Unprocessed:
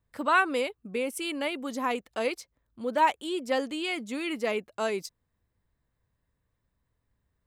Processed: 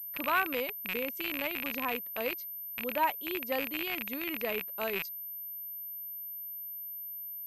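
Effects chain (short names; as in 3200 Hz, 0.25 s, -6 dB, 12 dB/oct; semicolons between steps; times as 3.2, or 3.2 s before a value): rattling part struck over -55 dBFS, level -16 dBFS; pulse-width modulation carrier 13000 Hz; gain -6 dB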